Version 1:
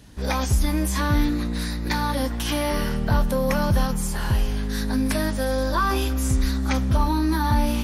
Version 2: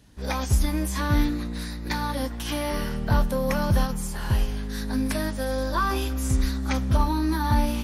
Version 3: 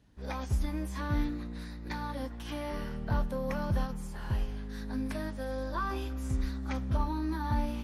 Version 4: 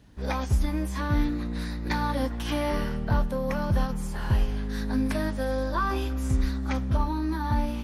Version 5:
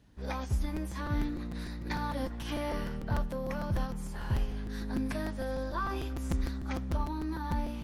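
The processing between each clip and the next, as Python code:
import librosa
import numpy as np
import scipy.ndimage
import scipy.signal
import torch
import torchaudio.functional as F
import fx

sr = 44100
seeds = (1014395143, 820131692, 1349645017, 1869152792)

y1 = fx.upward_expand(x, sr, threshold_db=-30.0, expansion=1.5)
y2 = fx.high_shelf(y1, sr, hz=4200.0, db=-10.5)
y2 = F.gain(torch.from_numpy(y2), -8.5).numpy()
y3 = fx.rider(y2, sr, range_db=3, speed_s=0.5)
y3 = F.gain(torch.from_numpy(y3), 7.0).numpy()
y4 = fx.buffer_crackle(y3, sr, first_s=0.76, period_s=0.15, block=256, kind='repeat')
y4 = F.gain(torch.from_numpy(y4), -7.0).numpy()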